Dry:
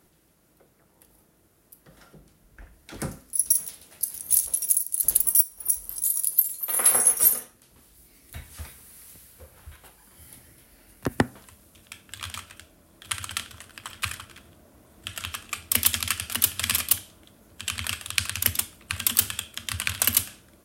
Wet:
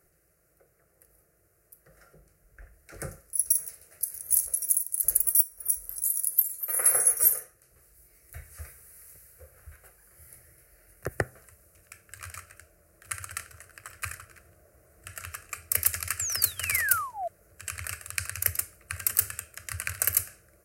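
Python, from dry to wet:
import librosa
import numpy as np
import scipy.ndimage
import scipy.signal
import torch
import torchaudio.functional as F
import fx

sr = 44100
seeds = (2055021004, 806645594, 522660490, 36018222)

y = fx.spec_paint(x, sr, seeds[0], shape='fall', start_s=16.19, length_s=1.09, low_hz=650.0, high_hz=7800.0, level_db=-26.0)
y = fx.fixed_phaser(y, sr, hz=930.0, stages=6)
y = y * librosa.db_to_amplitude(-2.0)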